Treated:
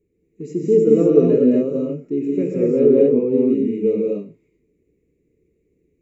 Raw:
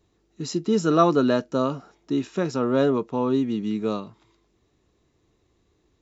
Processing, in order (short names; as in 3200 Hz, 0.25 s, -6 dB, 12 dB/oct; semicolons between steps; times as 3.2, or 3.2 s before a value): EQ curve 110 Hz 0 dB, 190 Hz +6 dB, 300 Hz +4 dB, 450 Hz +12 dB, 780 Hz -23 dB, 1500 Hz -20 dB, 2300 Hz +4 dB, 3300 Hz -20 dB, 5200 Hz -18 dB, 9100 Hz +2 dB; non-linear reverb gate 0.26 s rising, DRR -3.5 dB; dynamic EQ 640 Hz, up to +5 dB, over -33 dBFS, Q 0.7; gain -7 dB